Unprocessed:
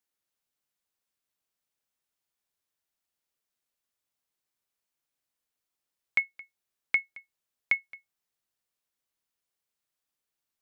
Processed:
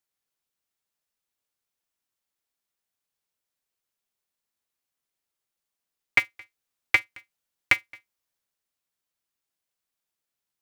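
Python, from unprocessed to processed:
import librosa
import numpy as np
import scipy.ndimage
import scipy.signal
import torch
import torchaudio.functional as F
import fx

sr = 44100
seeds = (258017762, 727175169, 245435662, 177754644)

y = fx.transient(x, sr, attack_db=6, sustain_db=2)
y = y * np.sign(np.sin(2.0 * np.pi * 110.0 * np.arange(len(y)) / sr))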